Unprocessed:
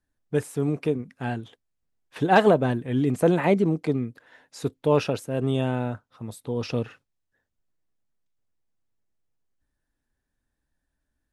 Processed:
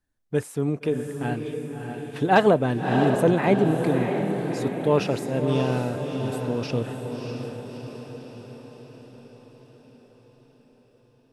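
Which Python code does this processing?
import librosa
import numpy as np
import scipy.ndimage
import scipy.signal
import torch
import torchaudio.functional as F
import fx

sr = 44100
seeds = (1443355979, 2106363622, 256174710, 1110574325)

y = fx.echo_diffused(x, sr, ms=636, feedback_pct=57, wet_db=-5.5)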